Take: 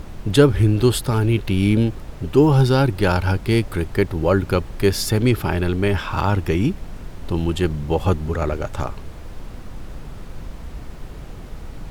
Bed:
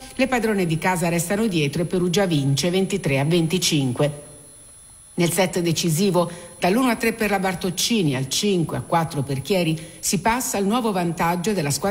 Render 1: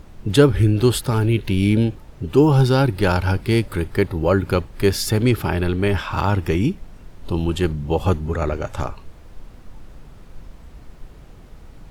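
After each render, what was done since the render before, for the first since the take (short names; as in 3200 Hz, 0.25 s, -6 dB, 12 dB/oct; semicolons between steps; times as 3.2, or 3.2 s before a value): noise print and reduce 8 dB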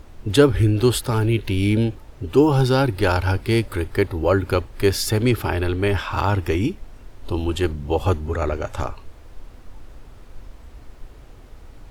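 bell 170 Hz -15 dB 0.34 oct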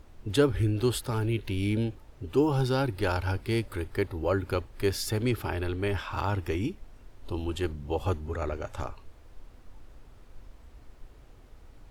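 gain -9 dB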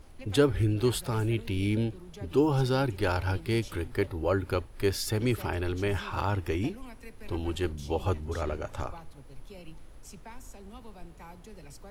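add bed -28 dB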